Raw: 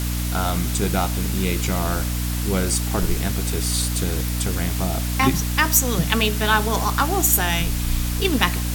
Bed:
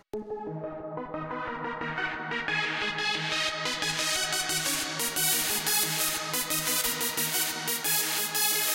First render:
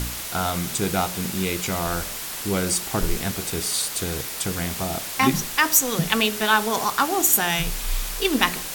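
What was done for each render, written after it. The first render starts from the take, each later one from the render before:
hum removal 60 Hz, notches 10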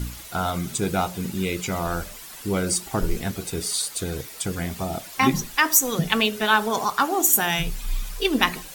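broadband denoise 11 dB, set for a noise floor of −32 dBFS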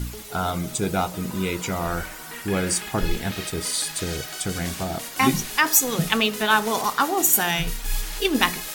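mix in bed −7 dB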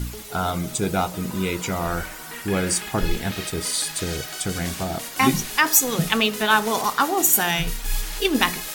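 level +1 dB
brickwall limiter −2 dBFS, peak gain reduction 2 dB

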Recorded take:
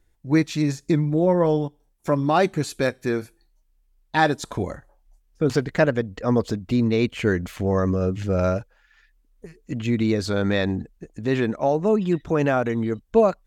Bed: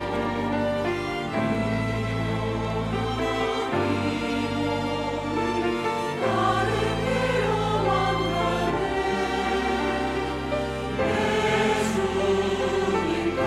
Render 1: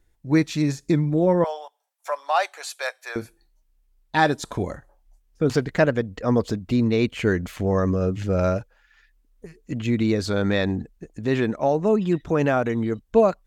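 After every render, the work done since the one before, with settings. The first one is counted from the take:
0:01.44–0:03.16: Butterworth high-pass 620 Hz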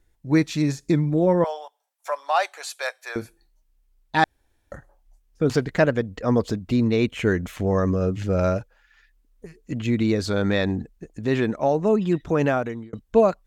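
0:04.24–0:04.72: fill with room tone
0:06.96–0:07.56: notch filter 4,600 Hz, Q 7.1
0:12.48–0:12.93: fade out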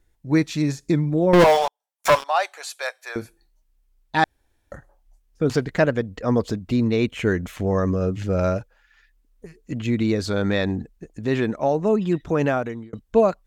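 0:01.33–0:02.24: leveller curve on the samples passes 5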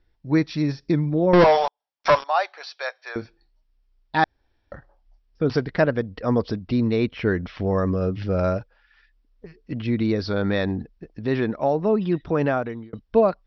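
Chebyshev low-pass filter 5,600 Hz, order 8
dynamic equaliser 3,000 Hz, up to −4 dB, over −42 dBFS, Q 1.9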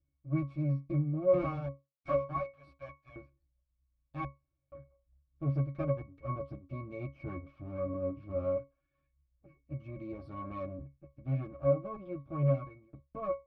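lower of the sound and its delayed copy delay 8.9 ms
resonances in every octave C#, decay 0.21 s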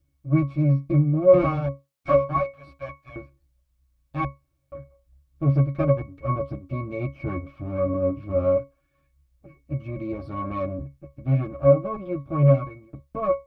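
level +11.5 dB

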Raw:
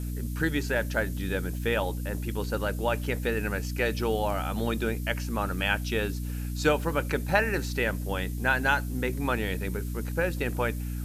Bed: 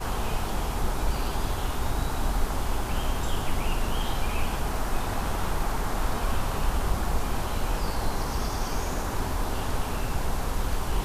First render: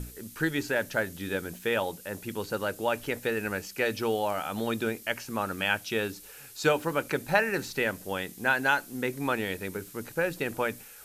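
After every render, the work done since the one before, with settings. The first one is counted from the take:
mains-hum notches 60/120/180/240/300 Hz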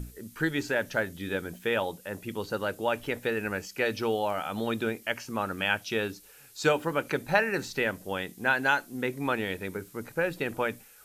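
noise reduction from a noise print 6 dB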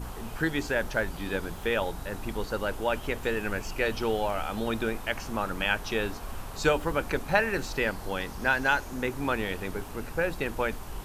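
mix in bed −11.5 dB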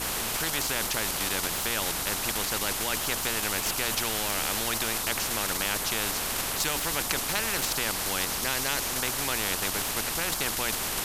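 in parallel at −1 dB: output level in coarse steps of 17 dB
on the sum: every bin compressed towards the loudest bin 4 to 1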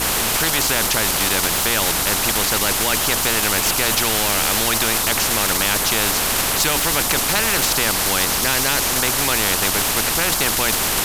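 leveller curve on the samples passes 3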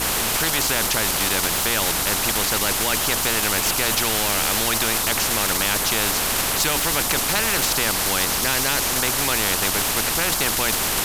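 level −2.5 dB

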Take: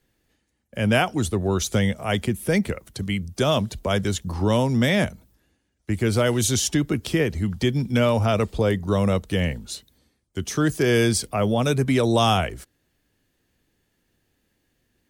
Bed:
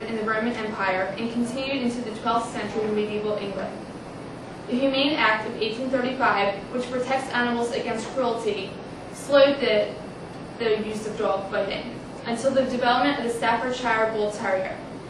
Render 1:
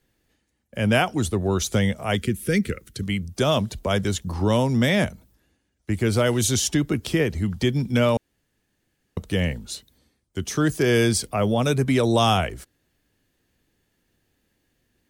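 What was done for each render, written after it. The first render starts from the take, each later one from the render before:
0:02.16–0:03.03: flat-topped bell 800 Hz −15 dB 1.1 octaves
0:08.17–0:09.17: fill with room tone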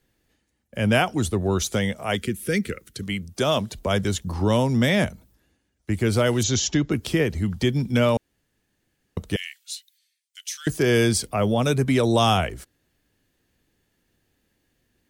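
0:01.67–0:03.78: low-shelf EQ 160 Hz −7.5 dB
0:06.43–0:06.91: Butterworth low-pass 7,200 Hz 96 dB per octave
0:09.36–0:10.67: inverse Chebyshev high-pass filter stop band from 360 Hz, stop band 80 dB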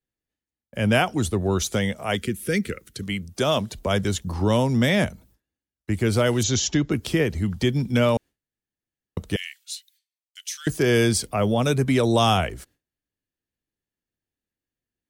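noise gate with hold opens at −50 dBFS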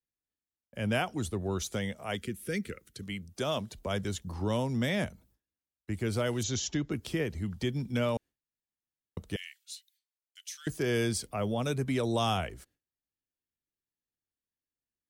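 level −10 dB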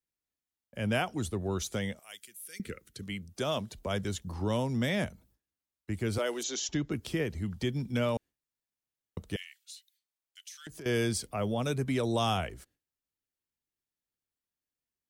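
0:01.99–0:02.60: first difference
0:06.18–0:06.69: high-pass filter 300 Hz 24 dB per octave
0:09.42–0:10.86: downward compressor, threshold −42 dBFS

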